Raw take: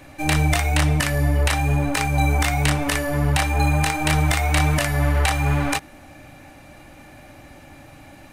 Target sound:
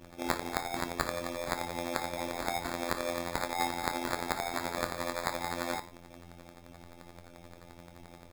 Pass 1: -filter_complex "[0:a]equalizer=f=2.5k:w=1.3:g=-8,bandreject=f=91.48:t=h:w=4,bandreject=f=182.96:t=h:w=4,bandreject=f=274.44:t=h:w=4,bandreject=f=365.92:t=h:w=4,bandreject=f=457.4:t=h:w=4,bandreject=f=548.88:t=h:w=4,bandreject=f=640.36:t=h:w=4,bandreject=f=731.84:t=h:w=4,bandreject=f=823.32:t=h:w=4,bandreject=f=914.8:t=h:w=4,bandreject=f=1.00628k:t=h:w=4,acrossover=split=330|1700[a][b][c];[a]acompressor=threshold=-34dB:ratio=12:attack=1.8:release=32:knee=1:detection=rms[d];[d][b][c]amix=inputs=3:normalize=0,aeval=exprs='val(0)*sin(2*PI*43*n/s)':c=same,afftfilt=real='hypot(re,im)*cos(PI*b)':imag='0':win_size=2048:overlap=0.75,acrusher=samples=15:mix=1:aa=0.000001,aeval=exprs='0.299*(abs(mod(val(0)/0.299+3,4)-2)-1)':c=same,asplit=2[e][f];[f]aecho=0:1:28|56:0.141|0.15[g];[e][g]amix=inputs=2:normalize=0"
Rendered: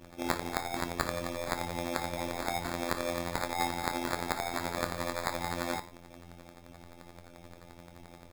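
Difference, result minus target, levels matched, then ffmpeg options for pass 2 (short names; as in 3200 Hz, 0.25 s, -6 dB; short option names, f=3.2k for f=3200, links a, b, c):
compressor: peak gain reduction -7 dB
-filter_complex "[0:a]equalizer=f=2.5k:w=1.3:g=-8,bandreject=f=91.48:t=h:w=4,bandreject=f=182.96:t=h:w=4,bandreject=f=274.44:t=h:w=4,bandreject=f=365.92:t=h:w=4,bandreject=f=457.4:t=h:w=4,bandreject=f=548.88:t=h:w=4,bandreject=f=640.36:t=h:w=4,bandreject=f=731.84:t=h:w=4,bandreject=f=823.32:t=h:w=4,bandreject=f=914.8:t=h:w=4,bandreject=f=1.00628k:t=h:w=4,acrossover=split=330|1700[a][b][c];[a]acompressor=threshold=-41.5dB:ratio=12:attack=1.8:release=32:knee=1:detection=rms[d];[d][b][c]amix=inputs=3:normalize=0,aeval=exprs='val(0)*sin(2*PI*43*n/s)':c=same,afftfilt=real='hypot(re,im)*cos(PI*b)':imag='0':win_size=2048:overlap=0.75,acrusher=samples=15:mix=1:aa=0.000001,aeval=exprs='0.299*(abs(mod(val(0)/0.299+3,4)-2)-1)':c=same,asplit=2[e][f];[f]aecho=0:1:28|56:0.141|0.15[g];[e][g]amix=inputs=2:normalize=0"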